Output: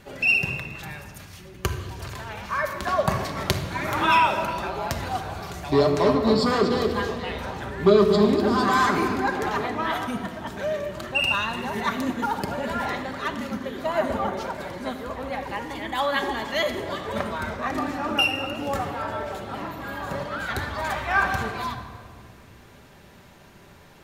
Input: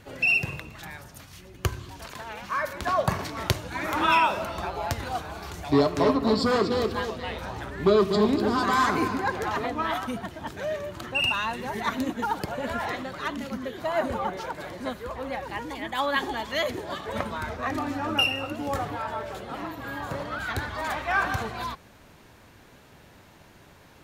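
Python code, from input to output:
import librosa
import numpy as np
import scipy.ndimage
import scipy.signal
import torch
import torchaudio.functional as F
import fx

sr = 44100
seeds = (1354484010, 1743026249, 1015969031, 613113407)

y = fx.room_shoebox(x, sr, seeds[0], volume_m3=3200.0, walls='mixed', distance_m=1.2)
y = y * 10.0 ** (1.0 / 20.0)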